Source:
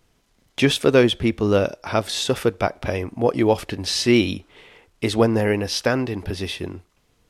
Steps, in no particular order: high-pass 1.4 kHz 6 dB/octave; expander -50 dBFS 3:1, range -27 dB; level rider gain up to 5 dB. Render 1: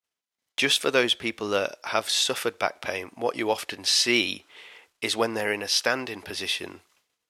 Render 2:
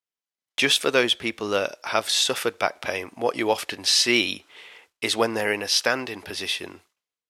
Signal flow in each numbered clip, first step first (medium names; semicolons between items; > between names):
level rider > expander > high-pass; high-pass > level rider > expander